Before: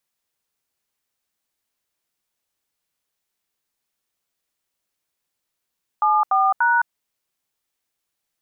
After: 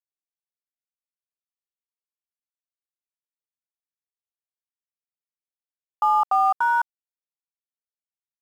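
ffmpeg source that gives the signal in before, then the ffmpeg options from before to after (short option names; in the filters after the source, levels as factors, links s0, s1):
-f lavfi -i "aevalsrc='0.141*clip(min(mod(t,0.292),0.213-mod(t,0.292))/0.002,0,1)*(eq(floor(t/0.292),0)*(sin(2*PI*852*mod(t,0.292))+sin(2*PI*1209*mod(t,0.292)))+eq(floor(t/0.292),1)*(sin(2*PI*770*mod(t,0.292))+sin(2*PI*1209*mod(t,0.292)))+eq(floor(t/0.292),2)*(sin(2*PI*941*mod(t,0.292))+sin(2*PI*1477*mod(t,0.292))))':d=0.876:s=44100"
-af "lowpass=f=1300:w=0.5412,lowpass=f=1300:w=1.3066,aeval=exprs='sgn(val(0))*max(abs(val(0))-0.00708,0)':c=same"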